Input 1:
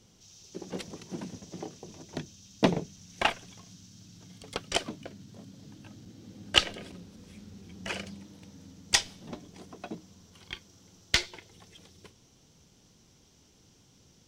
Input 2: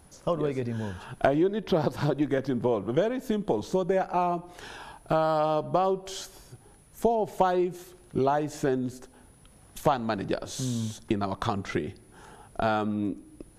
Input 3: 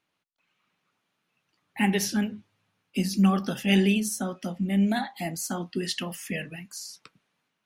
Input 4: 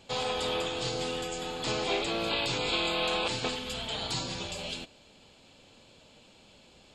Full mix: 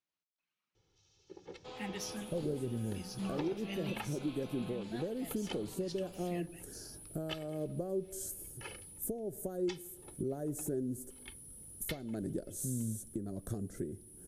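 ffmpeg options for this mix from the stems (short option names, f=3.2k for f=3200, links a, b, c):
-filter_complex "[0:a]lowpass=4.2k,aecho=1:1:2.3:0.92,adelay=750,volume=-14dB[a];[1:a]firequalizer=gain_entry='entry(340,0);entry(560,-5);entry(910,-28);entry(1600,-15);entry(2600,-27);entry(9200,13)':delay=0.05:min_phase=1,adelay=2050,volume=-3dB[b];[2:a]equalizer=f=5.4k:w=1.5:g=7.5,volume=-18.5dB,asplit=2[c][d];[3:a]highshelf=f=3.5k:g=-9,adelay=1550,volume=-15.5dB[e];[d]apad=whole_len=693754[f];[b][f]sidechaincompress=threshold=-43dB:ratio=8:attack=29:release=475[g];[a][g][c][e]amix=inputs=4:normalize=0,alimiter=level_in=2.5dB:limit=-24dB:level=0:latency=1:release=464,volume=-2.5dB"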